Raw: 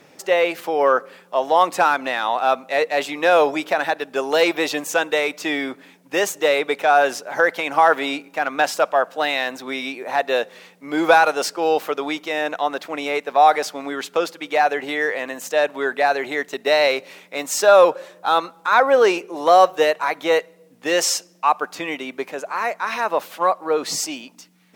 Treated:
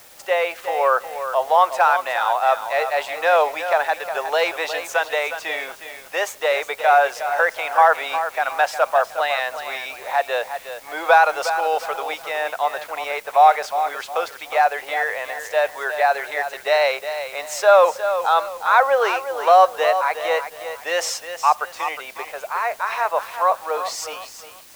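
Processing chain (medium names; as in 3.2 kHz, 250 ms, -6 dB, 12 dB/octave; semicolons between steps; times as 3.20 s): high-pass 580 Hz 24 dB/octave; treble shelf 2.8 kHz -9.5 dB; in parallel at -11 dB: word length cut 6-bit, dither triangular; on the sum: bit-crushed delay 361 ms, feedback 35%, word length 7-bit, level -9.5 dB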